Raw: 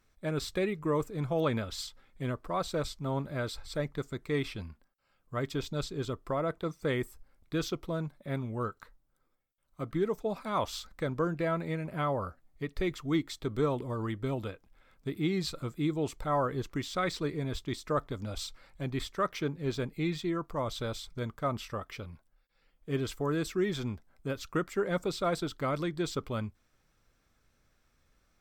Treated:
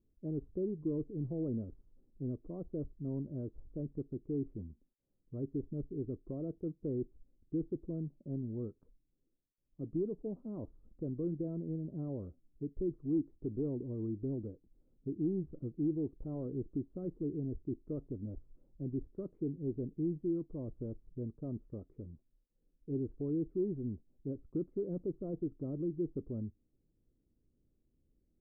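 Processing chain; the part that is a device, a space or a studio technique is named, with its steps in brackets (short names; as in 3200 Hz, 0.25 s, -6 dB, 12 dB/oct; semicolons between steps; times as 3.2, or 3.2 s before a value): overdriven synthesiser ladder filter (soft clip -25.5 dBFS, distortion -16 dB; ladder low-pass 410 Hz, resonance 40%); gain +3.5 dB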